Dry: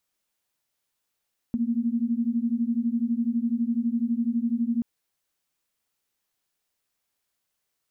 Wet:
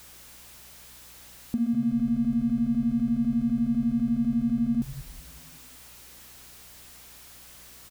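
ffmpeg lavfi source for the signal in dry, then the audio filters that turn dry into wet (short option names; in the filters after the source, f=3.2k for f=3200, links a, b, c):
-f lavfi -i "aevalsrc='0.0531*(sin(2*PI*228*t)+sin(2*PI*240*t))':d=3.28:s=44100"
-filter_complex "[0:a]aeval=exprs='val(0)+0.5*0.00708*sgn(val(0))':c=same,aeval=exprs='val(0)+0.00112*(sin(2*PI*60*n/s)+sin(2*PI*2*60*n/s)/2+sin(2*PI*3*60*n/s)/3+sin(2*PI*4*60*n/s)/4+sin(2*PI*5*60*n/s)/5)':c=same,asplit=6[a][b][c][d][e][f];[b]adelay=189,afreqshift=-98,volume=-14dB[g];[c]adelay=378,afreqshift=-196,volume=-20dB[h];[d]adelay=567,afreqshift=-294,volume=-26dB[i];[e]adelay=756,afreqshift=-392,volume=-32.1dB[j];[f]adelay=945,afreqshift=-490,volume=-38.1dB[k];[a][g][h][i][j][k]amix=inputs=6:normalize=0"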